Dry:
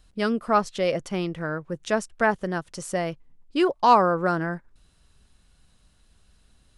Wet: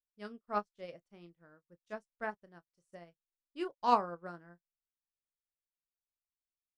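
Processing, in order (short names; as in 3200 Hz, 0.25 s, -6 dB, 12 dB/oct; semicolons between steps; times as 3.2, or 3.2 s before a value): doubler 29 ms -10 dB; upward expander 2.5:1, over -42 dBFS; gain -9 dB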